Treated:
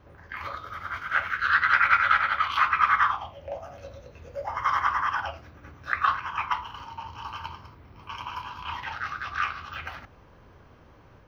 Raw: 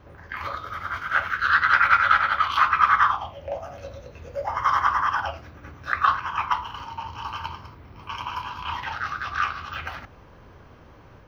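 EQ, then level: dynamic EQ 2200 Hz, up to +6 dB, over -37 dBFS, Q 2; -4.5 dB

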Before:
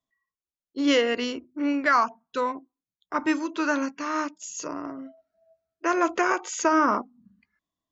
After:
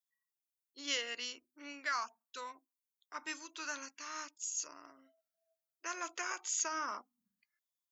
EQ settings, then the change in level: differentiator; low shelf 98 Hz +11 dB; -1.0 dB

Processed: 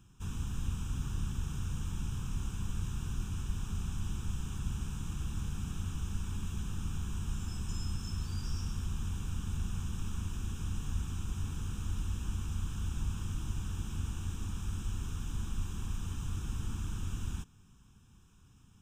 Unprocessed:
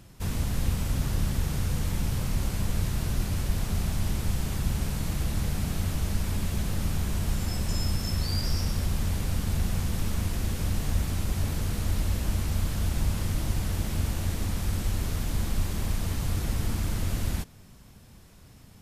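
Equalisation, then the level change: fixed phaser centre 3000 Hz, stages 8; -8.0 dB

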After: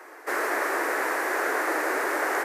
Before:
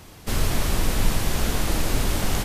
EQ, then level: steep high-pass 330 Hz 48 dB/oct; resonant high shelf 2400 Hz -10.5 dB, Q 3; +3.5 dB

